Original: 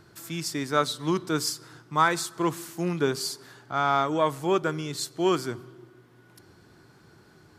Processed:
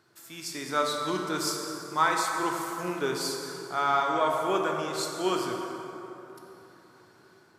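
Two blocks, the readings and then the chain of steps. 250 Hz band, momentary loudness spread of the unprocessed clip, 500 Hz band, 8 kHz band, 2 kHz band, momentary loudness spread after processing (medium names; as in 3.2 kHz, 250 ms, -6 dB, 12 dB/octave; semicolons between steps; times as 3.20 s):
-4.5 dB, 9 LU, -2.0 dB, -1.0 dB, -0.5 dB, 15 LU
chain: level rider gain up to 5 dB; high-pass 400 Hz 6 dB/octave; plate-style reverb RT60 3.4 s, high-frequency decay 0.5×, DRR 0.5 dB; trim -7.5 dB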